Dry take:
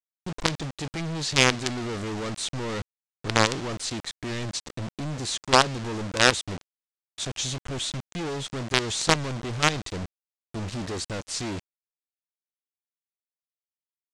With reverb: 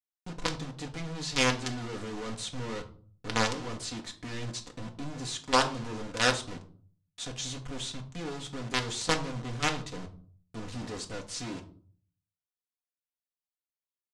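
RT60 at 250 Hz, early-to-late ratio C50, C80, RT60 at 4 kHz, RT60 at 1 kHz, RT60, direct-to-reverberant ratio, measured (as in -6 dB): 0.65 s, 13.0 dB, 17.5 dB, 0.30 s, 0.40 s, 0.45 s, 1.5 dB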